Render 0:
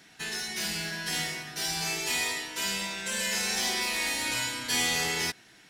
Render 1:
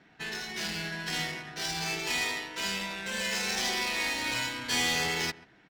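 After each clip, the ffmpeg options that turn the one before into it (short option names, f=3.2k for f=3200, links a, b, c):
-filter_complex "[0:a]asplit=2[a][b];[b]adelay=134.1,volume=-18dB,highshelf=f=4k:g=-3.02[c];[a][c]amix=inputs=2:normalize=0,adynamicsmooth=sensitivity=7:basefreq=2k"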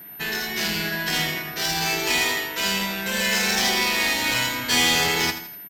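-filter_complex "[0:a]aeval=exprs='val(0)+0.00398*sin(2*PI*13000*n/s)':c=same,asplit=2[a][b];[b]aecho=0:1:82|164|246|328:0.282|0.11|0.0429|0.0167[c];[a][c]amix=inputs=2:normalize=0,volume=8.5dB"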